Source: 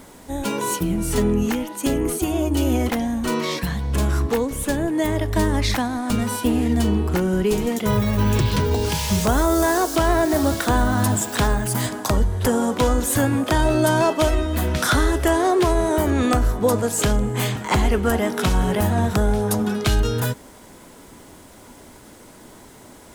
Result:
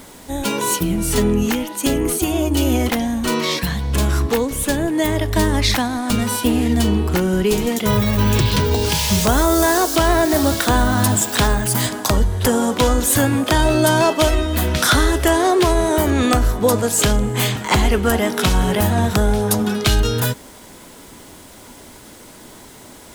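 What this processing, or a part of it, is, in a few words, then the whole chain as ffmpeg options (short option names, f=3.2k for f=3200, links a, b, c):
presence and air boost: -af "equalizer=f=3.7k:t=o:w=1.7:g=4.5,highshelf=f=11k:g=6.5,volume=2.5dB"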